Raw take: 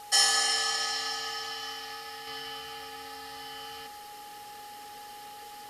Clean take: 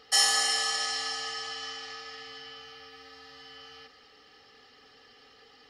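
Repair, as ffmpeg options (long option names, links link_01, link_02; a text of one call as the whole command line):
ffmpeg -i in.wav -af "bandreject=frequency=830:width=30,afwtdn=0.0025,asetnsamples=nb_out_samples=441:pad=0,asendcmd='2.27 volume volume -5dB',volume=0dB" out.wav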